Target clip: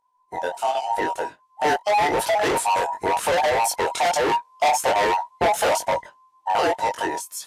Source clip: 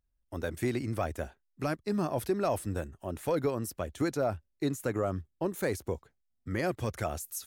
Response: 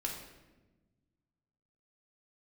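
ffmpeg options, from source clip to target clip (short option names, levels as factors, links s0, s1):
-af "afftfilt=real='real(if(between(b,1,1008),(2*floor((b-1)/48)+1)*48-b,b),0)':imag='imag(if(between(b,1,1008),(2*floor((b-1)/48)+1)*48-b,b),0)*if(between(b,1,1008),-1,1)':win_size=2048:overlap=0.75,dynaudnorm=f=410:g=9:m=4.47,flanger=delay=19:depth=3.5:speed=0.89,lowpass=9700,asoftclip=type=hard:threshold=0.0562,acontrast=84,adynamicequalizer=threshold=0.0126:dfrequency=250:dqfactor=0.71:tfrequency=250:tqfactor=0.71:attack=5:release=100:ratio=0.375:range=2.5:mode=cutabove:tftype=bell,alimiter=limit=0.112:level=0:latency=1:release=158,highpass=f=120:p=1,volume=1.58" -ar 32000 -c:a libvorbis -b:a 96k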